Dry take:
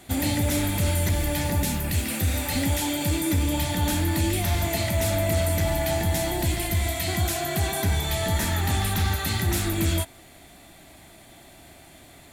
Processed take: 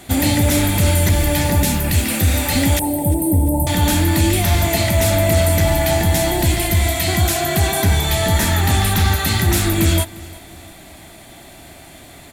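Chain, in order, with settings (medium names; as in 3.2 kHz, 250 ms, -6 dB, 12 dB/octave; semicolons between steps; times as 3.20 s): 2.79–3.67 s: Chebyshev band-stop 890–8500 Hz, order 5; feedback delay 350 ms, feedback 44%, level -21.5 dB; trim +8.5 dB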